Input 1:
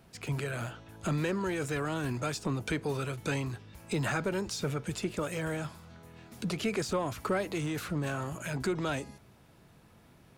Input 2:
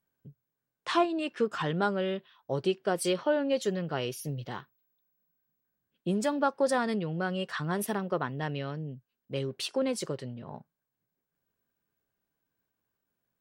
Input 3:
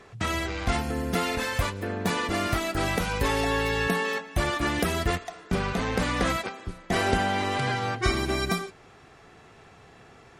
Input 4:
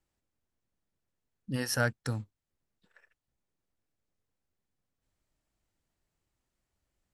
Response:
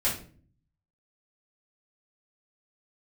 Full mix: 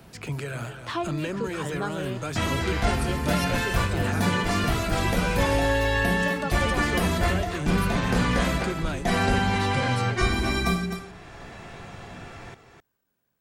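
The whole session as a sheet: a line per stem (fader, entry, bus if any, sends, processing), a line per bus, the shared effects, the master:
−2.5 dB, 0.00 s, no send, echo send −11.5 dB, no processing
−6.0 dB, 0.00 s, no send, no echo send, no processing
−5.5 dB, 2.15 s, send −4.5 dB, echo send −5 dB, no processing
−16.0 dB, 1.70 s, no send, no echo send, sine wavefolder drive 9 dB, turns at −12.5 dBFS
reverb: on, RT60 0.45 s, pre-delay 3 ms
echo: single-tap delay 258 ms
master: multiband upward and downward compressor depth 40%

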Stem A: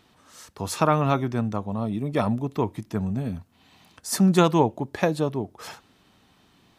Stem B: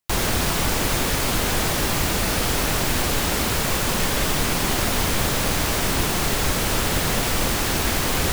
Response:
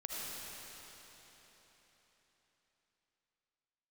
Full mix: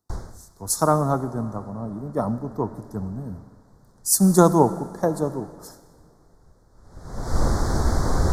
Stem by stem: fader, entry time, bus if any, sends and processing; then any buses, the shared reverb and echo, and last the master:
−3.0 dB, 0.00 s, send −11 dB, no processing
0.0 dB, 0.00 s, no send, low-pass filter 3,400 Hz 12 dB per octave; automatic ducking −22 dB, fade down 0.45 s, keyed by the first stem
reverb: on, RT60 4.2 s, pre-delay 35 ms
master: Butterworth band-reject 2,700 Hz, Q 0.65; high-shelf EQ 6,200 Hz +9 dB; multiband upward and downward expander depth 70%

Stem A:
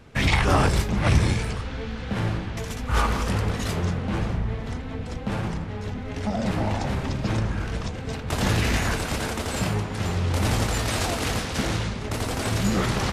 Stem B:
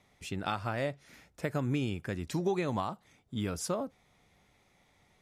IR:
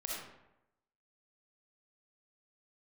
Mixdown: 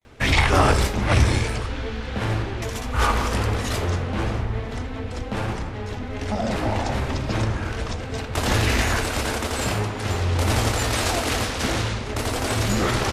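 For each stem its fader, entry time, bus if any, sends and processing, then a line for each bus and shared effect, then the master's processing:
+2.0 dB, 0.05 s, send −11.5 dB, mains-hum notches 50/100 Hz
−7.5 dB, 0.00 s, no send, noise gate with hold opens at −58 dBFS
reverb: on, RT60 0.90 s, pre-delay 20 ms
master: parametric band 170 Hz −12 dB 0.44 octaves

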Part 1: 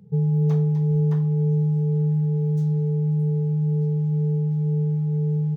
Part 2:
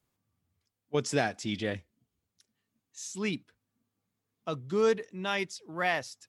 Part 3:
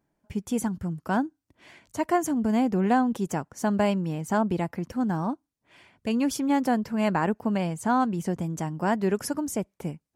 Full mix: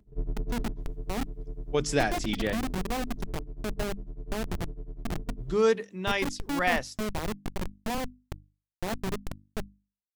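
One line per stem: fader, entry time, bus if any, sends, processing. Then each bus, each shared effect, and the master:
−6.5 dB, 0.00 s, no send, sub-octave generator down 2 octaves, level −1 dB; comb filter 3 ms, depth 99%; amplitude tremolo 10 Hz, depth 96%; automatic ducking −9 dB, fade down 0.95 s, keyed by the third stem
+2.5 dB, 0.80 s, muted 0:03.23–0:05.39, no send, no processing
−1.5 dB, 0.00 s, no send, mains-hum notches 50/100/150/200/250/300/350 Hz; comparator with hysteresis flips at −21.5 dBFS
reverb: not used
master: mains-hum notches 50/100/150/200/250/300 Hz

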